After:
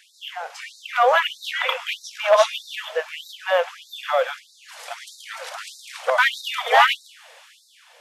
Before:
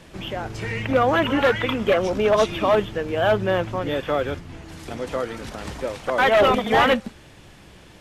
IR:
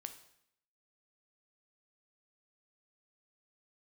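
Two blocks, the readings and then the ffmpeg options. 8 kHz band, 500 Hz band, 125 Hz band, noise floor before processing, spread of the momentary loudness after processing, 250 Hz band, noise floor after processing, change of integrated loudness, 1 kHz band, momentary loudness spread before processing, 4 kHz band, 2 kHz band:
+4.0 dB, −3.5 dB, below −40 dB, −47 dBFS, 19 LU, below −40 dB, −54 dBFS, 0.0 dB, +1.0 dB, 15 LU, +3.5 dB, +2.0 dB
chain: -filter_complex "[0:a]dynaudnorm=framelen=160:gausssize=9:maxgain=5dB,asplit=2[link_01][link_02];[1:a]atrim=start_sample=2205[link_03];[link_02][link_03]afir=irnorm=-1:irlink=0,volume=-0.5dB[link_04];[link_01][link_04]amix=inputs=2:normalize=0,afftfilt=real='re*gte(b*sr/1024,440*pow(3700/440,0.5+0.5*sin(2*PI*1.6*pts/sr)))':imag='im*gte(b*sr/1024,440*pow(3700/440,0.5+0.5*sin(2*PI*1.6*pts/sr)))':win_size=1024:overlap=0.75,volume=-4dB"

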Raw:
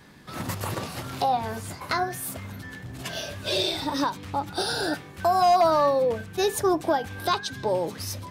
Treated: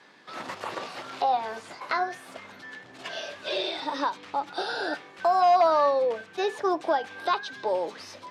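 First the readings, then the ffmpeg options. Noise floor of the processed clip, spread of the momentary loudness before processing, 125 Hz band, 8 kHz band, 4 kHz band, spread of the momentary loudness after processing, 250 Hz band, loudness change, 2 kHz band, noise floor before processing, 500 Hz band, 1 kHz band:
−50 dBFS, 14 LU, below −20 dB, below −10 dB, −5.0 dB, 19 LU, −6.5 dB, −1.5 dB, −0.5 dB, −44 dBFS, −1.5 dB, −0.5 dB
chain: -filter_complex "[0:a]acrossover=split=3400[link_01][link_02];[link_02]acompressor=threshold=-39dB:ratio=4:attack=1:release=60[link_03];[link_01][link_03]amix=inputs=2:normalize=0,highpass=430,lowpass=5200"

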